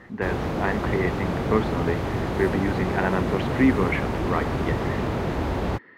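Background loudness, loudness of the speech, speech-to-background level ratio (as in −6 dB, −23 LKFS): −27.0 LKFS, −27.5 LKFS, −0.5 dB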